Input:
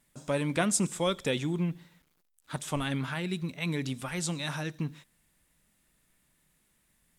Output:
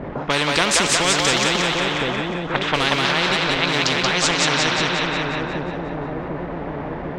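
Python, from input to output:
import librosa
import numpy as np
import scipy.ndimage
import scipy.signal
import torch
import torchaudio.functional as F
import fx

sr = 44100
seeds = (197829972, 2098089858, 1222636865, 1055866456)

p1 = x + 0.5 * 10.0 ** (-40.0 / 20.0) * np.sign(x)
p2 = fx.highpass(p1, sr, hz=220.0, slope=6)
p3 = fx.quant_float(p2, sr, bits=2)
p4 = p2 + F.gain(torch.from_numpy(p3), -5.5).numpy()
p5 = fx.dynamic_eq(p4, sr, hz=420.0, q=1.1, threshold_db=-40.0, ratio=4.0, max_db=7)
p6 = fx.env_lowpass(p5, sr, base_hz=390.0, full_db=-22.0)
p7 = fx.air_absorb(p6, sr, metres=190.0)
p8 = p7 + fx.echo_split(p7, sr, split_hz=490.0, low_ms=749, high_ms=180, feedback_pct=52, wet_db=-3.5, dry=0)
p9 = fx.spectral_comp(p8, sr, ratio=4.0)
y = F.gain(torch.from_numpy(p9), 5.0).numpy()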